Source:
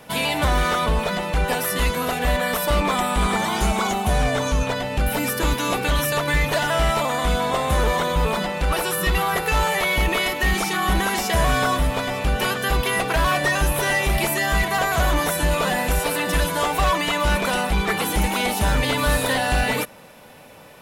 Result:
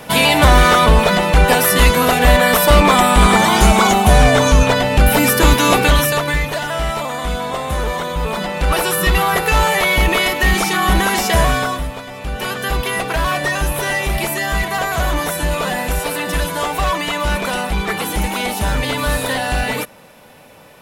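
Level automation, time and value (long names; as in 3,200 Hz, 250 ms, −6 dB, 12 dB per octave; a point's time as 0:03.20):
0:05.81 +10 dB
0:06.54 −0.5 dB
0:08.19 −0.5 dB
0:08.75 +6 dB
0:11.39 +6 dB
0:12.06 −7 dB
0:12.59 +1.5 dB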